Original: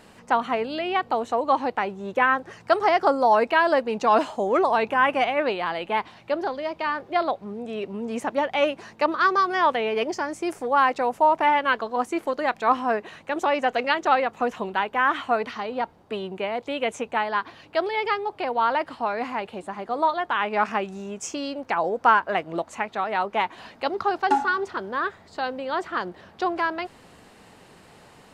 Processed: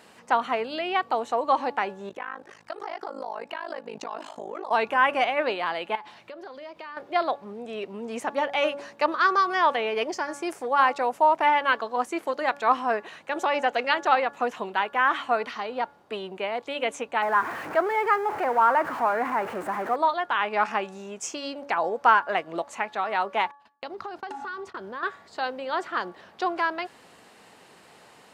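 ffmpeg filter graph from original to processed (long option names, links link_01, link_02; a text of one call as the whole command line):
ffmpeg -i in.wav -filter_complex "[0:a]asettb=1/sr,asplit=3[link_01][link_02][link_03];[link_01]atrim=end=2.094[link_04];[link_02]atrim=start=2.09:end=4.71,asetpts=PTS-STARTPTS,afade=type=in:duration=0.004:curve=qsin,afade=type=out:start_time=2.616:duration=0.004:curve=qsin,acompressor=threshold=-26dB:ratio=8:attack=3.2:release=140:knee=1:detection=peak,tremolo=f=52:d=1[link_05];[link_03]atrim=start=4.706[link_06];[link_04][link_05]acrossfade=duration=0.004:curve1=hsin:curve2=qsin[link_07];[link_07][link_06]acrossfade=duration=0.004:curve1=qsin:curve2=hsin,asettb=1/sr,asplit=3[link_08][link_09][link_10];[link_08]atrim=end=5.954[link_11];[link_09]atrim=start=5.95:end=6.97,asetpts=PTS-STARTPTS,afade=type=in:duration=0.004:curve=qsin,afade=type=out:start_time=1.016:duration=0.004:curve=qsin,bandreject=frequency=830:width=9.9,acompressor=threshold=-36dB:ratio=6:attack=3.2:release=140:knee=1:detection=peak[link_12];[link_10]atrim=start=6.966[link_13];[link_11][link_12]acrossfade=duration=0.004:curve1=hsin:curve2=qsin[link_14];[link_14][link_13]acrossfade=duration=0.004:curve1=qsin:curve2=hsin,asettb=1/sr,asplit=3[link_15][link_16][link_17];[link_15]atrim=end=17.224[link_18];[link_16]atrim=start=17.22:end=19.96,asetpts=PTS-STARTPTS,afade=type=in:duration=0.004:curve=qsin,afade=type=out:start_time=2.736:duration=0.004:curve=qsin,aeval=exprs='val(0)+0.5*0.0422*sgn(val(0))':channel_layout=same,highpass=54,highshelf=frequency=2400:width_type=q:width=1.5:gain=-13.5[link_19];[link_17]atrim=start=19.956[link_20];[link_18][link_19]acrossfade=duration=0.004:curve1=hsin:curve2=qsin[link_21];[link_21][link_20]acrossfade=duration=0.004:curve1=qsin:curve2=hsin,asettb=1/sr,asplit=3[link_22][link_23][link_24];[link_22]atrim=end=23.514[link_25];[link_23]atrim=start=23.51:end=25.03,asetpts=PTS-STARTPTS,afade=type=in:duration=0.004:curve=qsin,afade=type=out:start_time=1.516:duration=0.004:curve=qsin,agate=range=-42dB:threshold=-40dB:ratio=16:release=100:detection=peak,lowshelf=frequency=190:gain=10.5,acompressor=threshold=-30dB:ratio=16:attack=3.2:release=140:knee=1:detection=peak[link_26];[link_24]atrim=start=25.026[link_27];[link_25][link_26]acrossfade=duration=0.004:curve1=hsin:curve2=qsin[link_28];[link_28][link_27]acrossfade=duration=0.004:curve1=qsin:curve2=hsin,highpass=frequency=170:poles=1,lowshelf=frequency=320:gain=-6,bandreject=frequency=284.3:width_type=h:width=4,bandreject=frequency=568.6:width_type=h:width=4,bandreject=frequency=852.9:width_type=h:width=4,bandreject=frequency=1137.2:width_type=h:width=4,bandreject=frequency=1421.5:width_type=h:width=4,bandreject=frequency=1705.8:width_type=h:width=4" out.wav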